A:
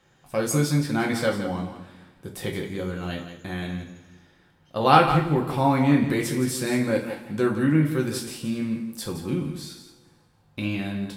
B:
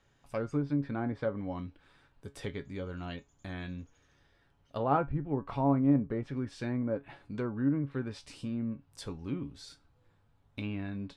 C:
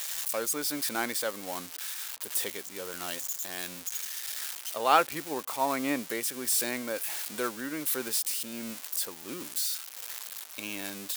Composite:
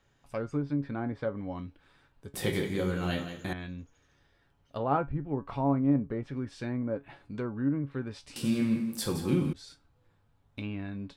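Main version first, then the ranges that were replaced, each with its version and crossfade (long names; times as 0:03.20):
B
0:02.34–0:03.53: punch in from A
0:08.36–0:09.53: punch in from A
not used: C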